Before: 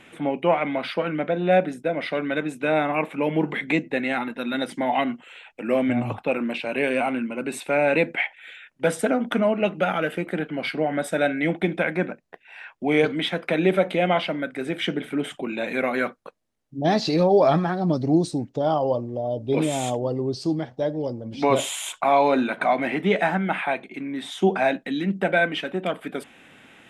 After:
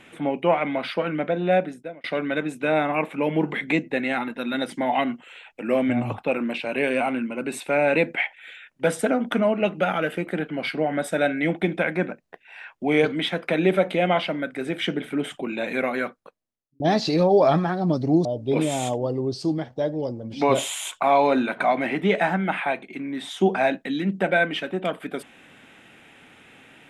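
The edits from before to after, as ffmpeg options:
-filter_complex "[0:a]asplit=4[a][b][c][d];[a]atrim=end=2.04,asetpts=PTS-STARTPTS,afade=t=out:st=1.24:d=0.8:c=qsin[e];[b]atrim=start=2.04:end=16.8,asetpts=PTS-STARTPTS,afade=t=in:d=0.004:c=hsin,afade=t=out:st=13.73:d=1.03[f];[c]atrim=start=16.8:end=18.252,asetpts=PTS-STARTPTS,afade=t=in:d=0.004:c=hsin[g];[d]atrim=start=19.258[h];[e][f][g]concat=n=3:v=0:a=1[i];[i][h]acrossfade=d=0.004:c1=hsin:c2=hsin"

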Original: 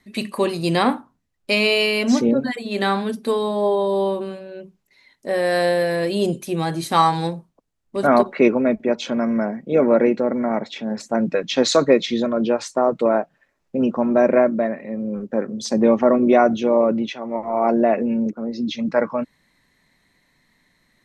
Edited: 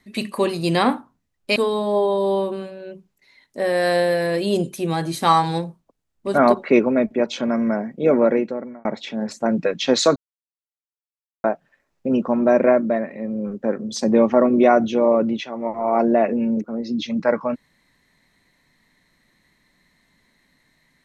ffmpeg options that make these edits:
-filter_complex "[0:a]asplit=5[a][b][c][d][e];[a]atrim=end=1.562[f];[b]atrim=start=3.248:end=10.54,asetpts=PTS-STARTPTS,afade=t=out:st=6.622:d=0.67[g];[c]atrim=start=10.54:end=11.85,asetpts=PTS-STARTPTS,afade=t=in:d=0.004:c=hsin,afade=t=out:st=1.306:d=0.004:c=hsin[h];[d]atrim=start=11.85:end=13.13,asetpts=PTS-STARTPTS,volume=0[i];[e]atrim=start=13.13,asetpts=PTS-STARTPTS,afade=t=in:d=0.004:c=hsin[j];[g][h][i][j]concat=n=4:v=0:a=1[k];[f][k]acrossfade=d=0.004:c1=hsin:c2=hsin"

